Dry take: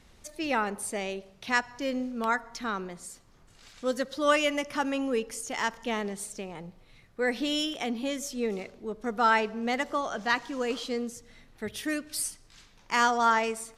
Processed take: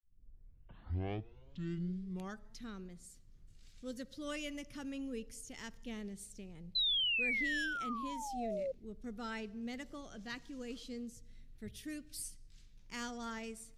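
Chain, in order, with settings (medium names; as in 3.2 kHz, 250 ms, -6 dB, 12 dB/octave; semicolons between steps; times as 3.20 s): tape start-up on the opening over 2.67 s; painted sound fall, 6.75–8.72 s, 520–4100 Hz -18 dBFS; amplifier tone stack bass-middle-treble 10-0-1; trim +8 dB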